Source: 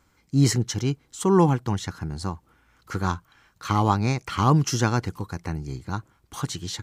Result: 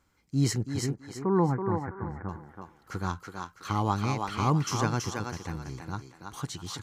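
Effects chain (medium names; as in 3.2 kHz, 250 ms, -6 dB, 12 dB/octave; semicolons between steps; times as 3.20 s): 0.61–2.29 s: steep low-pass 2.1 kHz 72 dB/octave; thinning echo 328 ms, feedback 33%, high-pass 330 Hz, level -3.5 dB; trim -6.5 dB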